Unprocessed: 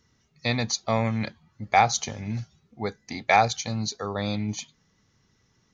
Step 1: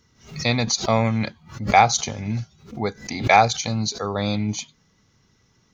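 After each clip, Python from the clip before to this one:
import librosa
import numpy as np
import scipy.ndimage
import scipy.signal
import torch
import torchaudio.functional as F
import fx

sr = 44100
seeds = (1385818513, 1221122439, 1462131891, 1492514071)

y = fx.notch(x, sr, hz=1800.0, q=14.0)
y = fx.pre_swell(y, sr, db_per_s=130.0)
y = y * 10.0 ** (4.5 / 20.0)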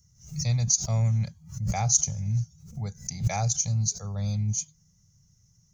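y = fx.curve_eq(x, sr, hz=(170.0, 280.0, 590.0, 1100.0, 3800.0, 6200.0), db=(0, -30, -17, -22, -20, 3))
y = y * 10.0 ** (1.5 / 20.0)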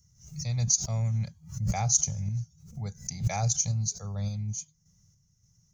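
y = fx.tremolo_random(x, sr, seeds[0], hz=3.5, depth_pct=55)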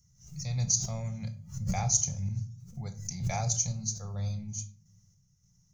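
y = fx.room_shoebox(x, sr, seeds[1], volume_m3=370.0, walls='furnished', distance_m=0.88)
y = y * 10.0 ** (-2.5 / 20.0)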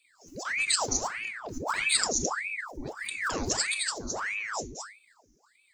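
y = fx.notch_comb(x, sr, f0_hz=800.0)
y = y + 10.0 ** (-3.5 / 20.0) * np.pad(y, (int(215 * sr / 1000.0), 0))[:len(y)]
y = fx.ring_lfo(y, sr, carrier_hz=1300.0, swing_pct=90, hz=1.6)
y = y * 10.0 ** (4.5 / 20.0)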